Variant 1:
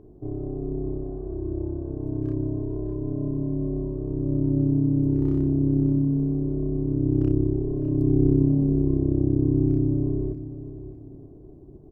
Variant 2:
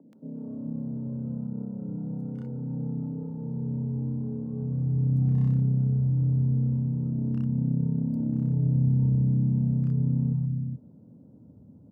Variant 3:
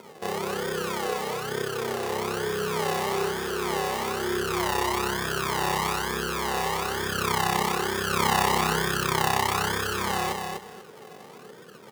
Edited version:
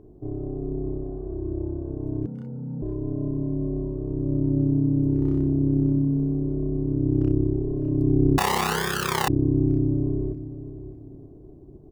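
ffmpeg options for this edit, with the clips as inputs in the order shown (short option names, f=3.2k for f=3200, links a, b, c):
-filter_complex "[0:a]asplit=3[a][b][c];[a]atrim=end=2.262[d];[1:a]atrim=start=2.258:end=2.822[e];[b]atrim=start=2.818:end=8.382[f];[2:a]atrim=start=8.378:end=9.282[g];[c]atrim=start=9.278[h];[d][e]acrossfade=d=0.004:c1=hsin:c2=hsin[i];[i][f]acrossfade=d=0.004:c1=hsin:c2=hsin[j];[j][g]acrossfade=d=0.004:c1=hsin:c2=hsin[k];[k][h]acrossfade=d=0.004:c1=hsin:c2=hsin"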